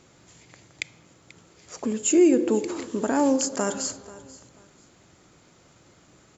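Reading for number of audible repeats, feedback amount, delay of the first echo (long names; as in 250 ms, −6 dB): 2, 25%, 487 ms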